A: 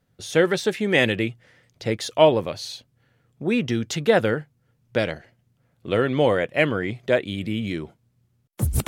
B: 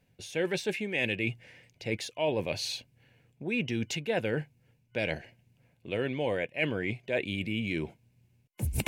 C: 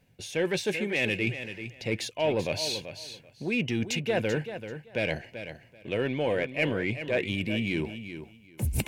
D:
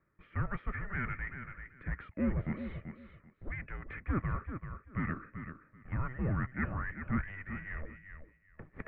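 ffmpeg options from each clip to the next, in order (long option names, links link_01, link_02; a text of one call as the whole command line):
ffmpeg -i in.wav -af "superequalizer=10b=0.355:12b=2.51,areverse,acompressor=threshold=-29dB:ratio=4,areverse" out.wav
ffmpeg -i in.wav -filter_complex "[0:a]asplit=2[link_01][link_02];[link_02]asoftclip=type=tanh:threshold=-29dB,volume=-5dB[link_03];[link_01][link_03]amix=inputs=2:normalize=0,aecho=1:1:386|772:0.299|0.0537" out.wav
ffmpeg -i in.wav -filter_complex "[0:a]asplit=2[link_01][link_02];[link_02]volume=32dB,asoftclip=hard,volume=-32dB,volume=-6dB[link_03];[link_01][link_03]amix=inputs=2:normalize=0,highpass=frequency=390:width_type=q:width=0.5412,highpass=frequency=390:width_type=q:width=1.307,lowpass=frequency=2100:width_type=q:width=0.5176,lowpass=frequency=2100:width_type=q:width=0.7071,lowpass=frequency=2100:width_type=q:width=1.932,afreqshift=-390,volume=-5dB" out.wav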